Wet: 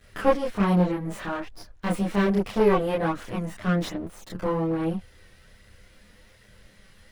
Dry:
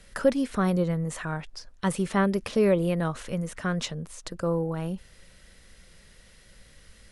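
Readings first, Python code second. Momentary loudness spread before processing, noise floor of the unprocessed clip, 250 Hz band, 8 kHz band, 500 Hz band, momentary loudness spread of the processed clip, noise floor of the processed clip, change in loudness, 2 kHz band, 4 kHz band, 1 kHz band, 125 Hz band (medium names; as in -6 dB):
12 LU, -55 dBFS, +2.0 dB, -6.0 dB, +1.5 dB, 13 LU, -56 dBFS, +2.0 dB, +1.0 dB, -0.5 dB, +4.5 dB, +1.0 dB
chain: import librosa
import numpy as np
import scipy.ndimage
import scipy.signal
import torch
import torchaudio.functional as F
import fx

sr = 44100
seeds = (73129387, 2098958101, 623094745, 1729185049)

y = fx.lower_of_two(x, sr, delay_ms=9.8)
y = fx.peak_eq(y, sr, hz=8500.0, db=-8.0, octaves=1.9)
y = fx.chorus_voices(y, sr, voices=2, hz=0.62, base_ms=27, depth_ms=2.9, mix_pct=55)
y = F.gain(torch.from_numpy(y), 6.0).numpy()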